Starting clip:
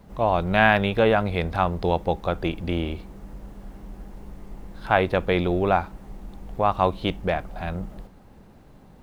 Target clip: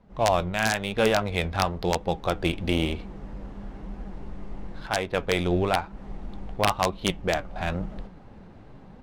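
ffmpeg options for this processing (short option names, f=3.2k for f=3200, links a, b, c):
-af "highshelf=f=2.9k:g=11,dynaudnorm=f=100:g=3:m=11dB,flanger=delay=3.7:depth=8.1:regen=66:speed=1:shape=triangular,aeval=exprs='(mod(2.11*val(0)+1,2)-1)/2.11':c=same,adynamicsmooth=sensitivity=3:basefreq=2.5k,volume=-4dB"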